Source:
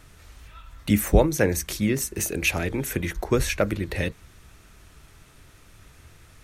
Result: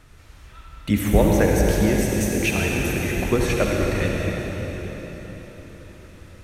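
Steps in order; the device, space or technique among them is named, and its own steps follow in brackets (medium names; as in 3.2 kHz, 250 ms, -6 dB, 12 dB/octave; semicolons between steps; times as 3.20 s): swimming-pool hall (reverberation RT60 4.6 s, pre-delay 58 ms, DRR -2 dB; treble shelf 5.1 kHz -6.5 dB)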